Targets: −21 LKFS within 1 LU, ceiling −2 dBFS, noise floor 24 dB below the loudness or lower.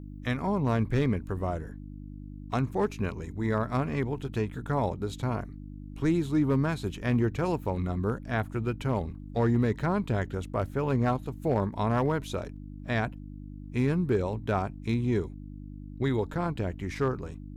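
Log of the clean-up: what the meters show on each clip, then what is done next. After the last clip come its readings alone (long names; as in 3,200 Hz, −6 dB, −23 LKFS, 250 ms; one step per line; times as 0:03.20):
share of clipped samples 0.2%; peaks flattened at −17.0 dBFS; mains hum 50 Hz; hum harmonics up to 300 Hz; level of the hum −39 dBFS; integrated loudness −29.5 LKFS; sample peak −17.0 dBFS; target loudness −21.0 LKFS
→ clipped peaks rebuilt −17 dBFS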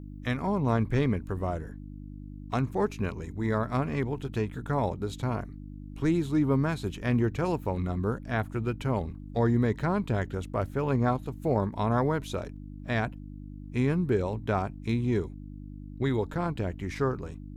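share of clipped samples 0.0%; mains hum 50 Hz; hum harmonics up to 300 Hz; level of the hum −39 dBFS
→ hum removal 50 Hz, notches 6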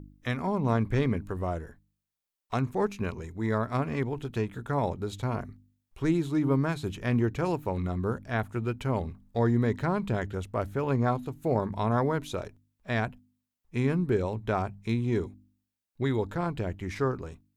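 mains hum none found; integrated loudness −30.0 LKFS; sample peak −12.0 dBFS; target loudness −21.0 LKFS
→ level +9 dB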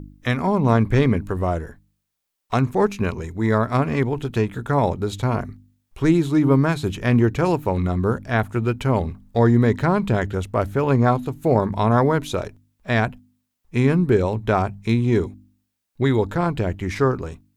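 integrated loudness −21.0 LKFS; sample peak −3.0 dBFS; background noise floor −77 dBFS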